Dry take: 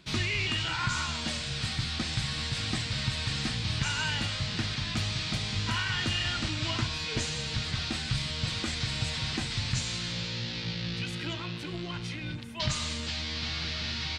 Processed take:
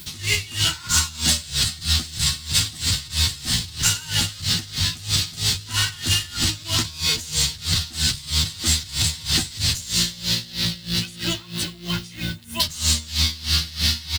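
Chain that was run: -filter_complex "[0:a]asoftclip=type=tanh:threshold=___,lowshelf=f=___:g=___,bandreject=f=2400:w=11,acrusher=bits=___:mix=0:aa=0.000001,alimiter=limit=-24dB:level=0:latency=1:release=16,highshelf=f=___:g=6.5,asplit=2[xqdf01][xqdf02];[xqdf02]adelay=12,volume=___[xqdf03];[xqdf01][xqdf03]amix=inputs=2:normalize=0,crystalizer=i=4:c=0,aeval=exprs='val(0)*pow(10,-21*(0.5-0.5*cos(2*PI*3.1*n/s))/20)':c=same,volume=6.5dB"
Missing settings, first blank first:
-26dB, 160, 10.5, 10, 5600, -3.5dB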